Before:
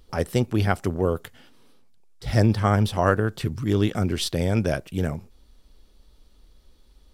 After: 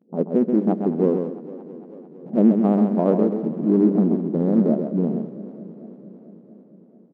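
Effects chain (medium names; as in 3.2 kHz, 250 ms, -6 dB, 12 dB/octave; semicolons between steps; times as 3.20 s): local Wiener filter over 41 samples; Bessel low-pass 540 Hz, order 8; gate with hold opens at -50 dBFS; bass shelf 380 Hz +9 dB; in parallel at -11 dB: hard clipper -20 dBFS, distortion -5 dB; on the sum: brick-wall FIR high-pass 170 Hz; feedback delay 132 ms, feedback 15%, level -6 dB; on a send at -22 dB: reverberation RT60 0.50 s, pre-delay 3 ms; on the sum: modulated delay 224 ms, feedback 76%, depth 185 cents, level -17 dB; trim +1.5 dB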